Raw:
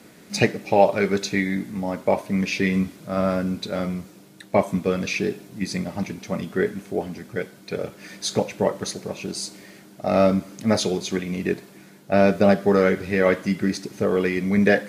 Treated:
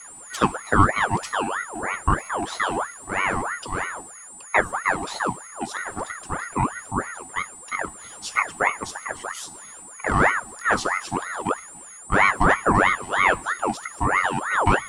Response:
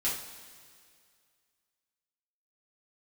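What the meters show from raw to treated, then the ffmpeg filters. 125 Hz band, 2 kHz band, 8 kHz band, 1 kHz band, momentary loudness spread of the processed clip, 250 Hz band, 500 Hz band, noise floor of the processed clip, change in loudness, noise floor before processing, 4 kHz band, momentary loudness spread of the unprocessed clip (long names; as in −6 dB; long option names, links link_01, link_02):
−2.5 dB, +6.0 dB, +2.5 dB, +7.0 dB, 13 LU, −7.5 dB, −8.0 dB, −42 dBFS, −0.5 dB, −48 dBFS, −3.0 dB, 13 LU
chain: -af "aeval=exprs='val(0)+0.0158*sin(2*PI*8300*n/s)':channel_layout=same,equalizer=frequency=125:width_type=o:width=1:gain=-11,equalizer=frequency=250:width_type=o:width=1:gain=11,equalizer=frequency=500:width_type=o:width=1:gain=7,equalizer=frequency=1000:width_type=o:width=1:gain=6,equalizer=frequency=8000:width_type=o:width=1:gain=5,aeval=exprs='val(0)*sin(2*PI*1100*n/s+1100*0.55/3.1*sin(2*PI*3.1*n/s))':channel_layout=same,volume=-6dB"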